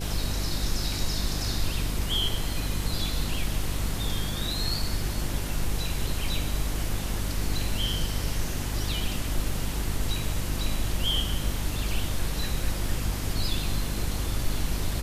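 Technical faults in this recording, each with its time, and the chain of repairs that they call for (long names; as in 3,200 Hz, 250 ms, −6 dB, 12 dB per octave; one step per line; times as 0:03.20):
mains hum 50 Hz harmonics 7 −32 dBFS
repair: hum removal 50 Hz, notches 7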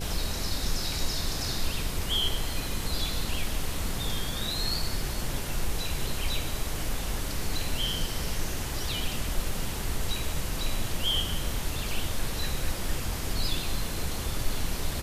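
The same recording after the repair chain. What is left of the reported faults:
none of them is left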